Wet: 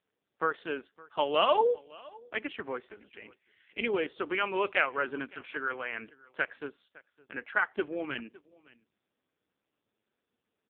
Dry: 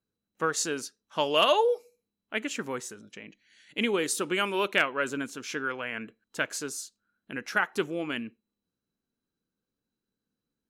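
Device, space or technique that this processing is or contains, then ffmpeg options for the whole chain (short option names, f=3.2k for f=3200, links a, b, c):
satellite phone: -filter_complex "[0:a]asplit=3[a][b][c];[a]afade=t=out:st=5.96:d=0.02[d];[b]highshelf=f=12k:g=5,afade=t=in:st=5.96:d=0.02,afade=t=out:st=6.54:d=0.02[e];[c]afade=t=in:st=6.54:d=0.02[f];[d][e][f]amix=inputs=3:normalize=0,highpass=320,lowpass=3.3k,aecho=1:1:561:0.0708" -ar 8000 -c:a libopencore_amrnb -b:a 5150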